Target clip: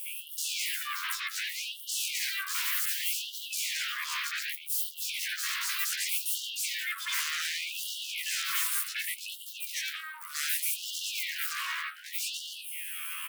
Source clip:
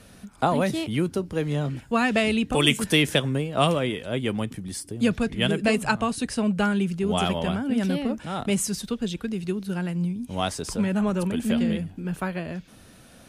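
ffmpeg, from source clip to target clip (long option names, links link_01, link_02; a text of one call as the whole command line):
ffmpeg -i in.wav -filter_complex "[0:a]afftfilt=real='re':imag='-im':win_size=2048:overlap=0.75,asuperstop=centerf=2900:order=12:qfactor=0.96,asetrate=80880,aresample=44100,atempo=0.545254,asplit=2[link_01][link_02];[link_02]alimiter=limit=-23dB:level=0:latency=1:release=361,volume=-1.5dB[link_03];[link_01][link_03]amix=inputs=2:normalize=0,acrossover=split=130|670[link_04][link_05][link_06];[link_04]acompressor=threshold=-57dB:ratio=4[link_07];[link_05]acompressor=threshold=-38dB:ratio=4[link_08];[link_06]acompressor=threshold=-27dB:ratio=4[link_09];[link_07][link_08][link_09]amix=inputs=3:normalize=0,aeval=exprs='0.178*sin(PI/2*10*val(0)/0.178)':channel_layout=same,lowshelf=frequency=100:gain=-4,acompressor=threshold=-21dB:ratio=8,equalizer=frequency=920:width_type=o:width=0.48:gain=-11.5,asoftclip=type=tanh:threshold=-26dB,acrossover=split=1100|4100[link_10][link_11][link_12];[link_11]adelay=80[link_13];[link_10]adelay=130[link_14];[link_14][link_13][link_12]amix=inputs=3:normalize=0,afftfilt=real='re*gte(b*sr/1024,940*pow(2800/940,0.5+0.5*sin(2*PI*0.66*pts/sr)))':imag='im*gte(b*sr/1024,940*pow(2800/940,0.5+0.5*sin(2*PI*0.66*pts/sr)))':win_size=1024:overlap=0.75,volume=-1dB" out.wav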